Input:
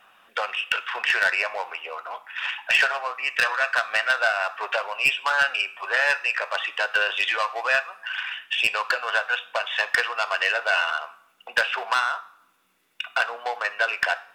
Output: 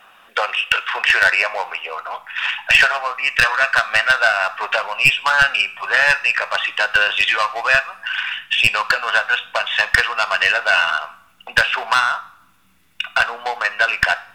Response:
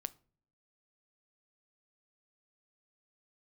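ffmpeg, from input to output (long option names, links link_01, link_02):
-af "asubboost=boost=10.5:cutoff=130,volume=7.5dB"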